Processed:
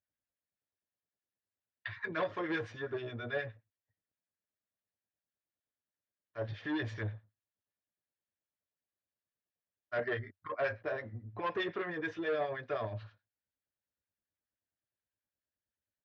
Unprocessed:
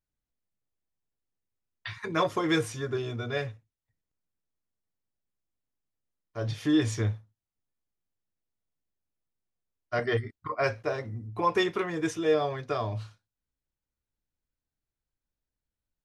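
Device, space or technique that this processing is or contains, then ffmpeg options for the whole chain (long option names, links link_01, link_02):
guitar amplifier with harmonic tremolo: -filter_complex "[0:a]acrossover=split=1200[link_01][link_02];[link_01]aeval=exprs='val(0)*(1-0.7/2+0.7/2*cos(2*PI*9.5*n/s))':channel_layout=same[link_03];[link_02]aeval=exprs='val(0)*(1-0.7/2-0.7/2*cos(2*PI*9.5*n/s))':channel_layout=same[link_04];[link_03][link_04]amix=inputs=2:normalize=0,asoftclip=type=tanh:threshold=-27.5dB,highpass=95,equalizer=frequency=95:width_type=q:width=4:gain=4,equalizer=frequency=140:width_type=q:width=4:gain=-5,equalizer=frequency=590:width_type=q:width=4:gain=7,equalizer=frequency=1700:width_type=q:width=4:gain=9,lowpass=frequency=4000:width=0.5412,lowpass=frequency=4000:width=1.3066,volume=-3.5dB"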